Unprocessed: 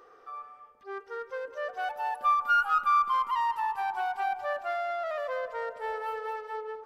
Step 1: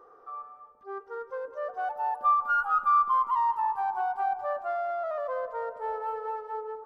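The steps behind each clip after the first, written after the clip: resonant high shelf 1600 Hz -11 dB, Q 1.5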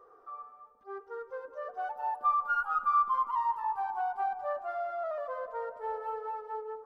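flange 0.83 Hz, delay 1.6 ms, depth 3.6 ms, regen -43%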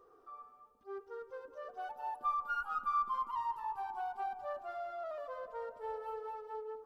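band shelf 980 Hz -8.5 dB 2.4 oct; gain +1.5 dB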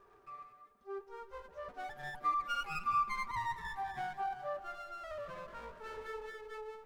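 minimum comb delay 5.1 ms; gain +1.5 dB

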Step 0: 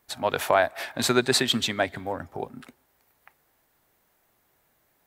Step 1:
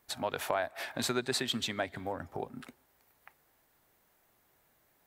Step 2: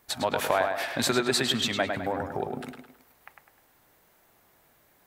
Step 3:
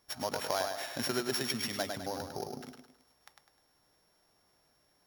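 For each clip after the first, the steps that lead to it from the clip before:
compressor 2:1, threshold -33 dBFS, peak gain reduction 10 dB; gain -2 dB
tape echo 0.104 s, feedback 44%, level -4 dB, low-pass 3800 Hz; gain +6.5 dB
sample sorter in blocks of 8 samples; gain -8 dB

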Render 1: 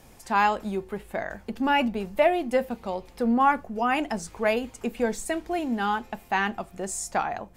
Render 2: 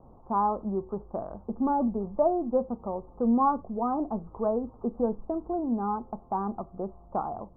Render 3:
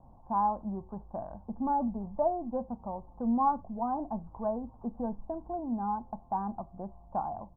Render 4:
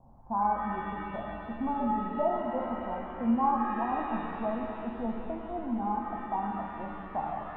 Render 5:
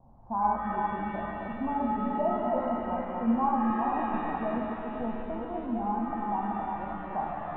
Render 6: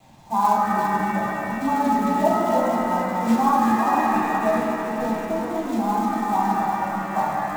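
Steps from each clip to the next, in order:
steep low-pass 1200 Hz 72 dB/oct; dynamic EQ 760 Hz, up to -4 dB, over -35 dBFS, Q 1.2
comb 1.2 ms, depth 66%; gain -5.5 dB
shimmer reverb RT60 2.9 s, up +7 st, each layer -8 dB, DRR 1 dB; gain -1.5 dB
regenerating reverse delay 0.218 s, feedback 48%, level -3 dB; air absorption 120 m
companded quantiser 6-bit; reverb, pre-delay 3 ms, DRR -4.5 dB; gain +5.5 dB

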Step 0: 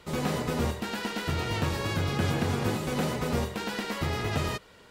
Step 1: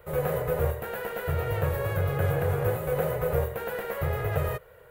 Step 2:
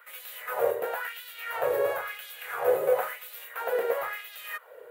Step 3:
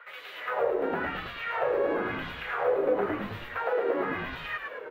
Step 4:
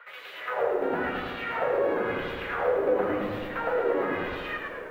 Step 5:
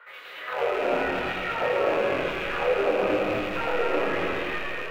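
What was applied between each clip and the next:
EQ curve 140 Hz 0 dB, 250 Hz -23 dB, 500 Hz +6 dB, 910 Hz -6 dB, 1600 Hz -2 dB, 5200 Hz -23 dB, 7500 Hz -14 dB, 15000 Hz +10 dB; gain +3 dB
LFO high-pass sine 0.98 Hz 420–3700 Hz
on a send: frequency-shifting echo 0.106 s, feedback 48%, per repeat -100 Hz, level -5.5 dB; on the sum: compressor 2:1, threshold -35 dBFS, peak gain reduction 9.5 dB; air absorption 240 m; gain +6.5 dB
darkening echo 82 ms, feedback 83%, low-pass 2100 Hz, level -8 dB; lo-fi delay 0.131 s, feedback 35%, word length 9-bit, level -14 dB
rattling part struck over -47 dBFS, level -24 dBFS; chorus 1.4 Hz, depth 4.1 ms; on a send at -2 dB: reverb RT60 0.45 s, pre-delay 0.184 s; on the sum: gain +3 dB

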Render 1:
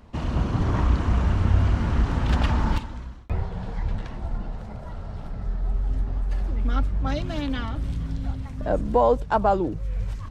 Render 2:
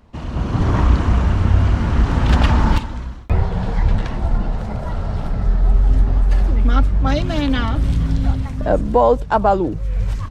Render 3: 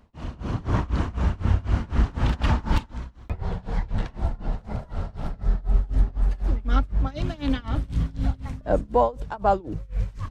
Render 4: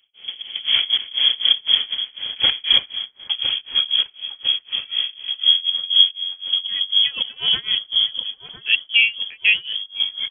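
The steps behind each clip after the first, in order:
AGC gain up to 13.5 dB; gain -1 dB
tremolo 4 Hz, depth 94%; gain -4.5 dB
step gate "..x.xxx.xxx.xx." 108 bpm -12 dB; thin delay 1.007 s, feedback 59%, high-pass 2200 Hz, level -7 dB; inverted band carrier 3300 Hz; gain +3.5 dB

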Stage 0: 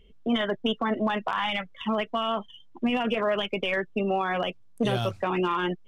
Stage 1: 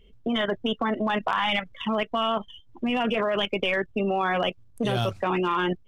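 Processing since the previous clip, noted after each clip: level quantiser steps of 10 dB; gain +5.5 dB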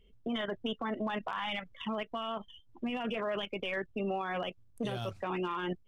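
limiter -18.5 dBFS, peak gain reduction 6 dB; gain -8 dB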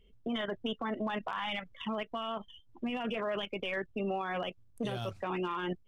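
nothing audible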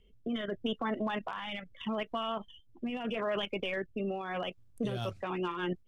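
rotary speaker horn 0.8 Hz, later 6.3 Hz, at 4.54; gain +2.5 dB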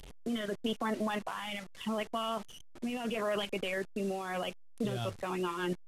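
delta modulation 64 kbps, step -43.5 dBFS

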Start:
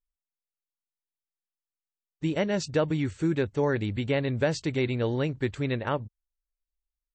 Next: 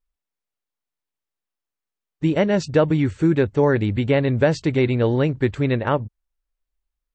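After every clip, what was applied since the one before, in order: high shelf 3300 Hz -9.5 dB; gain +8.5 dB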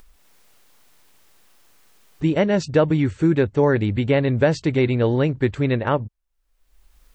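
upward compressor, threshold -29 dBFS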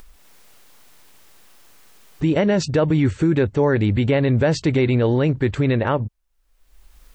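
limiter -15 dBFS, peak gain reduction 9 dB; gain +5.5 dB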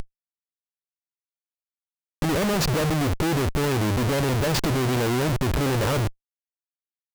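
in parallel at -1 dB: compressor, threshold -26 dBFS, peak gain reduction 12 dB; on the sum: Schmitt trigger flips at -27.5 dBFS; gain -3.5 dB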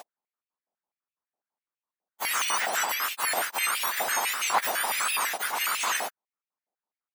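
spectrum mirrored in octaves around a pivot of 1900 Hz; stepped high-pass 12 Hz 730–2600 Hz

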